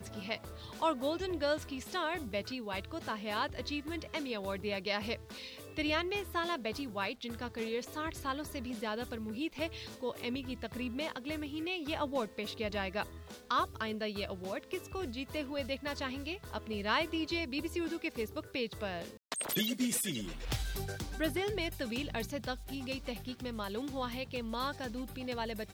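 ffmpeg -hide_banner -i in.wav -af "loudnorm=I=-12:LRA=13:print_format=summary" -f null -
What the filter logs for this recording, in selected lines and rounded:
Input Integrated:    -37.2 LUFS
Input True Peak:     -17.5 dBTP
Input LRA:             3.2 LU
Input Threshold:     -47.3 LUFS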